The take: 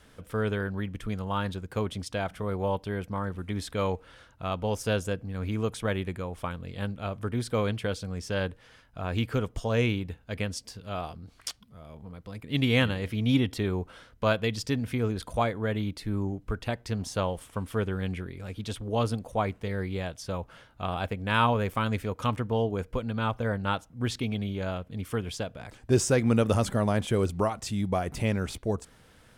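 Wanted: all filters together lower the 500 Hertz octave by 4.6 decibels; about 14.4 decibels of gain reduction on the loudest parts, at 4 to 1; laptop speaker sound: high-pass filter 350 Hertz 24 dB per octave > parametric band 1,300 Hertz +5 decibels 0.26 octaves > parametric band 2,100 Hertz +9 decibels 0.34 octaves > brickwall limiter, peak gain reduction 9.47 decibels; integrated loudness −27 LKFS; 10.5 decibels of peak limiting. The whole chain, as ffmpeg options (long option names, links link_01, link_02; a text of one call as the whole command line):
ffmpeg -i in.wav -af "equalizer=frequency=500:width_type=o:gain=-5,acompressor=threshold=-37dB:ratio=4,alimiter=level_in=8.5dB:limit=-24dB:level=0:latency=1,volume=-8.5dB,highpass=frequency=350:width=0.5412,highpass=frequency=350:width=1.3066,equalizer=frequency=1300:width_type=o:width=0.26:gain=5,equalizer=frequency=2100:width_type=o:width=0.34:gain=9,volume=22dB,alimiter=limit=-15dB:level=0:latency=1" out.wav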